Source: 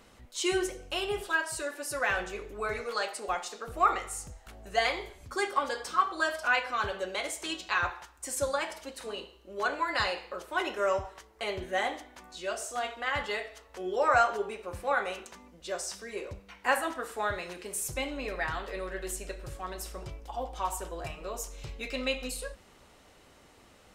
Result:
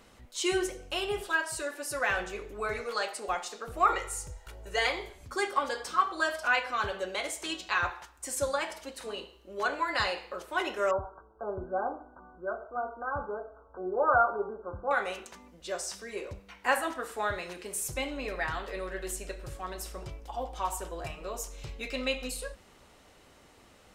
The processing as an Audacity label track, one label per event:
3.890000	4.870000	comb filter 2.1 ms
10.910000	14.910000	linear-phase brick-wall low-pass 1,600 Hz

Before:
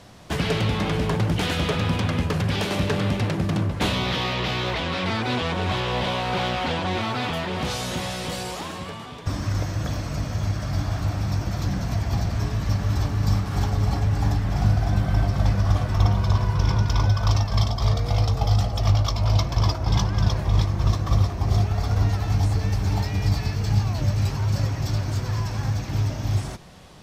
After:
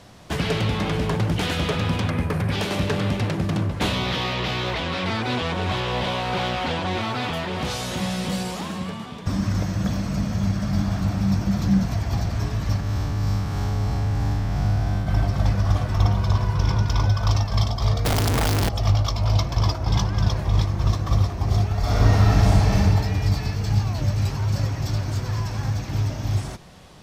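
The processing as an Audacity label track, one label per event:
2.090000	2.520000	gain on a spectral selection 2,600–8,100 Hz −7 dB
8.000000	11.860000	parametric band 200 Hz +15 dB 0.32 octaves
12.800000	15.070000	spectrum smeared in time width 150 ms
18.050000	18.690000	sign of each sample alone
21.800000	22.750000	thrown reverb, RT60 1.9 s, DRR −7.5 dB

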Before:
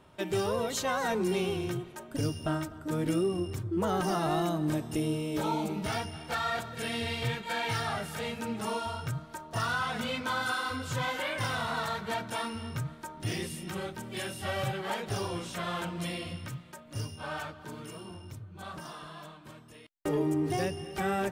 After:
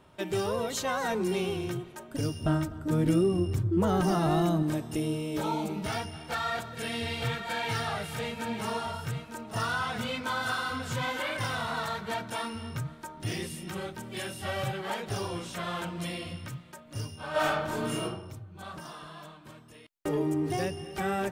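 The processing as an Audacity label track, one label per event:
2.410000	4.630000	low-shelf EQ 280 Hz +9 dB
6.130000	11.370000	single-tap delay 900 ms −9 dB
17.310000	18.030000	thrown reverb, RT60 0.8 s, DRR −11 dB

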